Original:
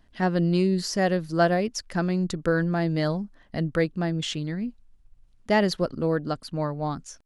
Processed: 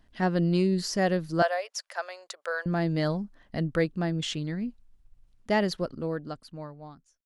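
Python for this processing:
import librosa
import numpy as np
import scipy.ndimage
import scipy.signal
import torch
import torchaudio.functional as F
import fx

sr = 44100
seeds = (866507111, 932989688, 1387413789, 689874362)

y = fx.fade_out_tail(x, sr, length_s=2.04)
y = fx.ellip_highpass(y, sr, hz=560.0, order=4, stop_db=60, at=(1.42, 2.66))
y = y * 10.0 ** (-2.0 / 20.0)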